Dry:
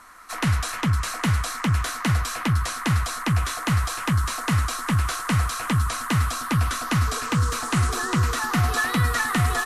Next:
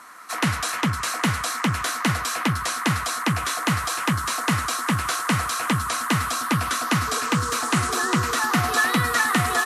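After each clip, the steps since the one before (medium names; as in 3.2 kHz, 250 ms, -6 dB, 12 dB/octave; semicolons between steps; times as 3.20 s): high-pass 180 Hz 12 dB/octave; trim +3.5 dB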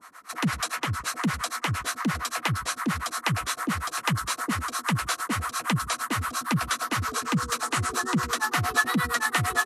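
harmonic tremolo 8.7 Hz, depth 100%, crossover 430 Hz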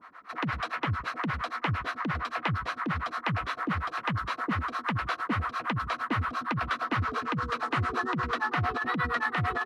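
distance through air 350 m; compressor with a negative ratio -27 dBFS, ratio -1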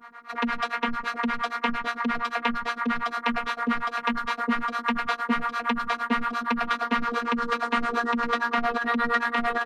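robot voice 236 Hz; trim +7 dB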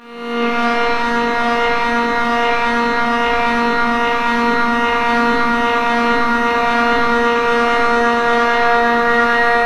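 reverse spectral sustain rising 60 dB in 1.07 s; reverberation RT60 3.2 s, pre-delay 7 ms, DRR -9 dB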